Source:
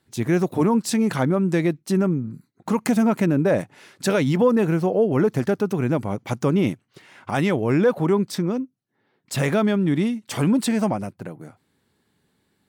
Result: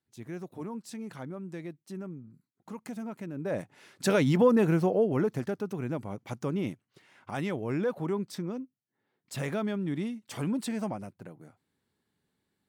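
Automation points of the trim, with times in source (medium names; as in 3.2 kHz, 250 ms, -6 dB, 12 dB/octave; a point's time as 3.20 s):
3.32 s -19.5 dB
3.54 s -11.5 dB
4.14 s -4 dB
4.81 s -4 dB
5.53 s -11.5 dB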